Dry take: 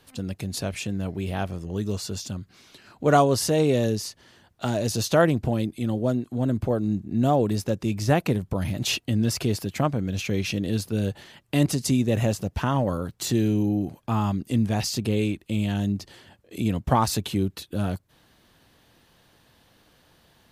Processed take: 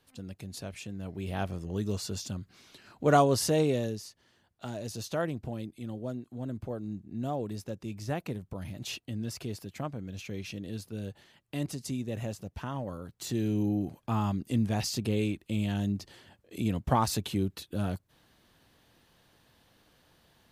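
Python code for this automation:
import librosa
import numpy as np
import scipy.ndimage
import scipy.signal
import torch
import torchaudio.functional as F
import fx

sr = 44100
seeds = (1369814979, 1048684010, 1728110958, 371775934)

y = fx.gain(x, sr, db=fx.line((0.96, -11.0), (1.43, -4.0), (3.57, -4.0), (4.05, -12.5), (13.01, -12.5), (13.65, -5.0)))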